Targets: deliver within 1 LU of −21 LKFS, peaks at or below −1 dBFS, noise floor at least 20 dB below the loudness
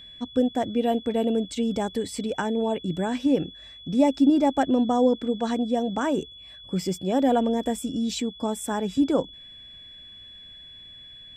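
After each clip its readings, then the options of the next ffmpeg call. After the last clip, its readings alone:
interfering tone 3,400 Hz; level of the tone −43 dBFS; integrated loudness −25.0 LKFS; sample peak −8.0 dBFS; target loudness −21.0 LKFS
→ -af "bandreject=frequency=3400:width=30"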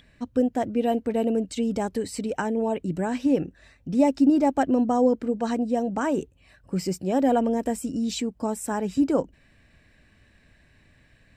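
interfering tone none found; integrated loudness −25.0 LKFS; sample peak −8.0 dBFS; target loudness −21.0 LKFS
→ -af "volume=4dB"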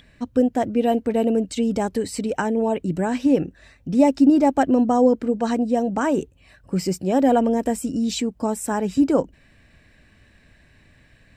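integrated loudness −21.0 LKFS; sample peak −4.0 dBFS; background noise floor −55 dBFS

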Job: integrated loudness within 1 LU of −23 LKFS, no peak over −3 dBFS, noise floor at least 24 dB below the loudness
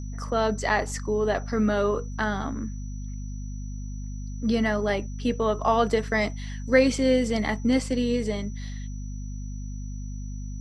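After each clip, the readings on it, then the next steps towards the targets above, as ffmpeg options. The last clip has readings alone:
mains hum 50 Hz; hum harmonics up to 250 Hz; level of the hum −31 dBFS; interfering tone 5,900 Hz; level of the tone −51 dBFS; integrated loudness −25.5 LKFS; sample peak −7.0 dBFS; target loudness −23.0 LKFS
→ -af "bandreject=frequency=50:width_type=h:width=4,bandreject=frequency=100:width_type=h:width=4,bandreject=frequency=150:width_type=h:width=4,bandreject=frequency=200:width_type=h:width=4,bandreject=frequency=250:width_type=h:width=4"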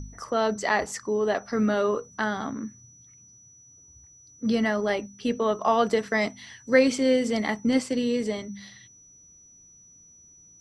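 mains hum none found; interfering tone 5,900 Hz; level of the tone −51 dBFS
→ -af "bandreject=frequency=5900:width=30"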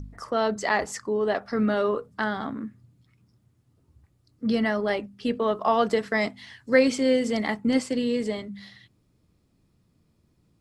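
interfering tone none found; integrated loudness −25.5 LKFS; sample peak −7.5 dBFS; target loudness −23.0 LKFS
→ -af "volume=2.5dB"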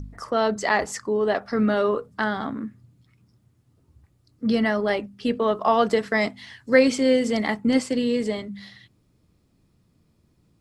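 integrated loudness −23.0 LKFS; sample peak −5.0 dBFS; background noise floor −65 dBFS

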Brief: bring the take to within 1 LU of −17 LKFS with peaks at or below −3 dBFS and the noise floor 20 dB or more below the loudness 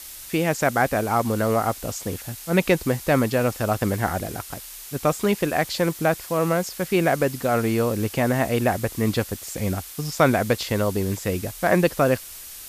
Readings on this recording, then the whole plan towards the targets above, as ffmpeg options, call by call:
background noise floor −40 dBFS; target noise floor −43 dBFS; integrated loudness −23.0 LKFS; sample peak −4.5 dBFS; target loudness −17.0 LKFS
→ -af "afftdn=noise_reduction=6:noise_floor=-40"
-af "volume=6dB,alimiter=limit=-3dB:level=0:latency=1"

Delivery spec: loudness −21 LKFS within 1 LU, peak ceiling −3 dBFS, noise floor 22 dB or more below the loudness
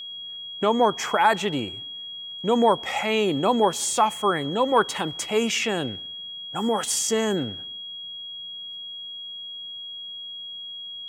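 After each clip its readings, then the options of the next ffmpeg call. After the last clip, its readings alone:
interfering tone 3,300 Hz; level of the tone −34 dBFS; integrated loudness −25.0 LKFS; sample peak −6.5 dBFS; target loudness −21.0 LKFS
→ -af "bandreject=frequency=3300:width=30"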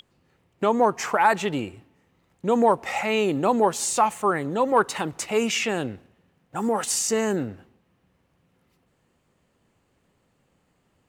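interfering tone none found; integrated loudness −23.5 LKFS; sample peak −7.0 dBFS; target loudness −21.0 LKFS
→ -af "volume=2.5dB"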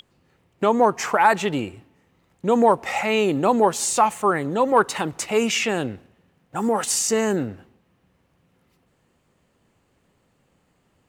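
integrated loudness −21.0 LKFS; sample peak −4.5 dBFS; background noise floor −66 dBFS

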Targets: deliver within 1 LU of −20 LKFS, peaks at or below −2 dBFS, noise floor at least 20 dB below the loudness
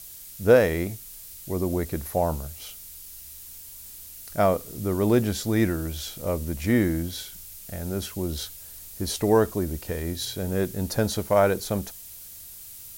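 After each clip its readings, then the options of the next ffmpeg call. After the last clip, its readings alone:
background noise floor −43 dBFS; target noise floor −46 dBFS; integrated loudness −25.5 LKFS; sample peak −5.5 dBFS; target loudness −20.0 LKFS
→ -af "afftdn=noise_reduction=6:noise_floor=-43"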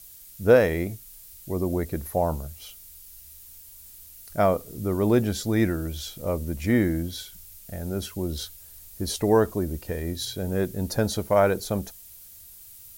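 background noise floor −47 dBFS; integrated loudness −25.5 LKFS; sample peak −5.5 dBFS; target loudness −20.0 LKFS
→ -af "volume=5.5dB,alimiter=limit=-2dB:level=0:latency=1"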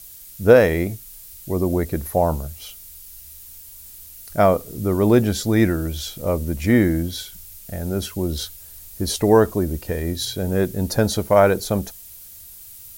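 integrated loudness −20.5 LKFS; sample peak −2.0 dBFS; background noise floor −42 dBFS

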